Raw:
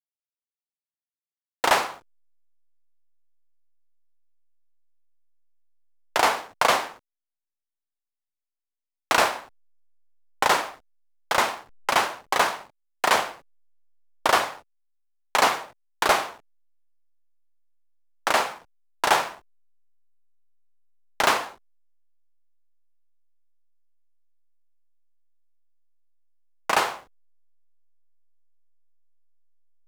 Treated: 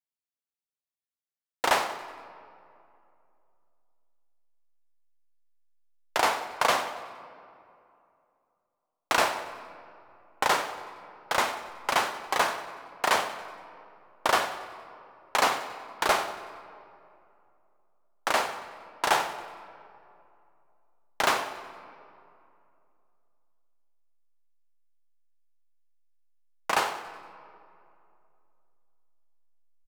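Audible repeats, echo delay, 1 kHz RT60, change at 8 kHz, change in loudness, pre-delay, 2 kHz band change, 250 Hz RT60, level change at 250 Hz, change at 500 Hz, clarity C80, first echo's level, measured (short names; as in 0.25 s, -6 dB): 3, 93 ms, 2.6 s, -4.0 dB, -4.0 dB, 9 ms, -3.5 dB, 2.8 s, -3.5 dB, -3.5 dB, 11.5 dB, -17.0 dB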